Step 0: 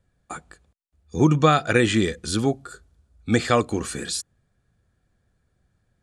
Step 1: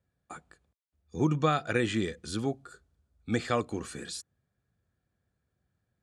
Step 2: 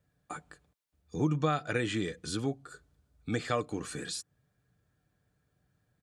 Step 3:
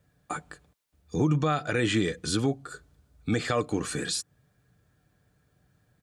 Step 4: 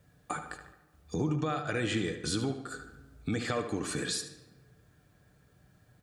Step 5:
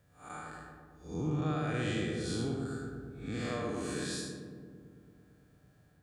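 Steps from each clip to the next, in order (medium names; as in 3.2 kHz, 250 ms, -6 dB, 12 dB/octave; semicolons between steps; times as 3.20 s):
high-pass 64 Hz; treble shelf 5.8 kHz -4.5 dB; trim -9 dB
comb 6.7 ms, depth 37%; compression 1.5:1, threshold -45 dBFS, peak gain reduction 9.5 dB; trim +4.5 dB
peak limiter -22.5 dBFS, peak gain reduction 7.5 dB; trim +7.5 dB
compression 2:1, threshold -40 dBFS, peak gain reduction 11 dB; tape echo 74 ms, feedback 54%, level -8 dB, low-pass 3.7 kHz; on a send at -16 dB: reverberation RT60 1.4 s, pre-delay 62 ms; on the sum: trim +3.5 dB
spectral blur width 167 ms; filtered feedback delay 112 ms, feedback 78%, low-pass 1.3 kHz, level -4 dB; trim -2 dB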